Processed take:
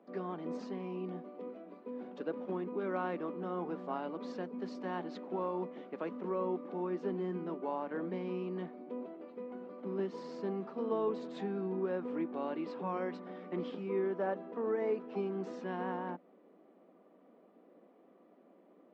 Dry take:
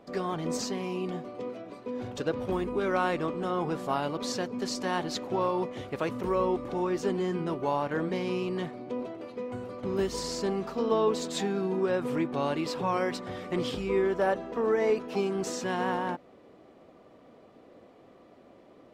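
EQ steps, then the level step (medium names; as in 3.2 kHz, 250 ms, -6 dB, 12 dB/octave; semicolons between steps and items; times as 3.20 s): Chebyshev high-pass 180 Hz, order 5; tape spacing loss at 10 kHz 31 dB; treble shelf 6.4 kHz -7.5 dB; -5.5 dB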